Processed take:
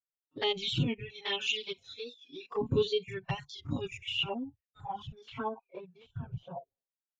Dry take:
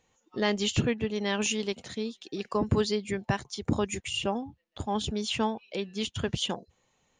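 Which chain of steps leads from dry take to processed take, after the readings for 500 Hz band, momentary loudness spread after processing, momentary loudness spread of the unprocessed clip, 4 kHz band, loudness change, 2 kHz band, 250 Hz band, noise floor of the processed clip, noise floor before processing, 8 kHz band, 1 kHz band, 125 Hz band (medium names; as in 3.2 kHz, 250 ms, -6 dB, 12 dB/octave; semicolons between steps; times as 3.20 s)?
-4.5 dB, 16 LU, 9 LU, -1.5 dB, -4.0 dB, -4.0 dB, -9.0 dB, under -85 dBFS, -73 dBFS, -16.0 dB, -6.0 dB, -4.0 dB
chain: spectrogram pixelated in time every 50 ms; expander -58 dBFS; spectral noise reduction 21 dB; comb 7.3 ms, depth 93%; touch-sensitive flanger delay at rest 6.7 ms, full sweep at -25 dBFS; low-pass sweep 3.5 kHz -> 660 Hz, 3.95–6.60 s; warped record 45 rpm, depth 100 cents; trim -3.5 dB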